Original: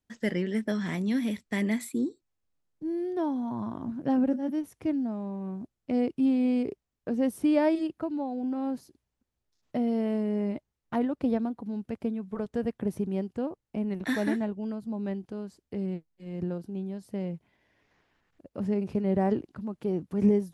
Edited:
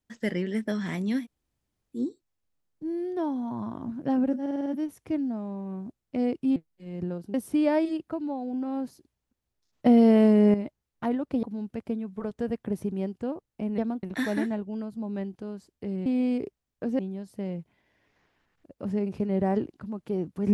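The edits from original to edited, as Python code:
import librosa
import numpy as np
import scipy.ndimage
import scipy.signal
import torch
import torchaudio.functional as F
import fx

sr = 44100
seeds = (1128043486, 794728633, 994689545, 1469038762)

y = fx.edit(x, sr, fx.room_tone_fill(start_s=1.22, length_s=0.75, crossfade_s=0.1),
    fx.stutter(start_s=4.41, slice_s=0.05, count=6),
    fx.swap(start_s=6.31, length_s=0.93, other_s=15.96, other_length_s=0.78),
    fx.clip_gain(start_s=9.76, length_s=0.68, db=10.0),
    fx.move(start_s=11.33, length_s=0.25, to_s=13.93), tone=tone)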